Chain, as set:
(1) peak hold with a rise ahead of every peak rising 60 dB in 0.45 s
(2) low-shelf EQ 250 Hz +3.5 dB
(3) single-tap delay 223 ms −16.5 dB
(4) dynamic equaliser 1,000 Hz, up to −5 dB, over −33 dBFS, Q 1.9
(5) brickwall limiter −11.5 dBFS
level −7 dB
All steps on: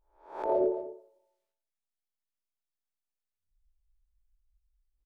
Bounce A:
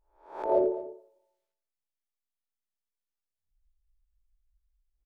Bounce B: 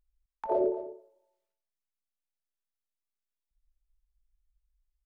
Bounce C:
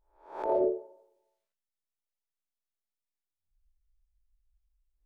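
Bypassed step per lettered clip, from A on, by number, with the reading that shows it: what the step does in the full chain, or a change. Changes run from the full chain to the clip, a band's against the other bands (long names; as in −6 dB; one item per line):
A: 5, change in crest factor +4.0 dB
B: 1, change in momentary loudness spread −2 LU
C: 3, change in momentary loudness spread −3 LU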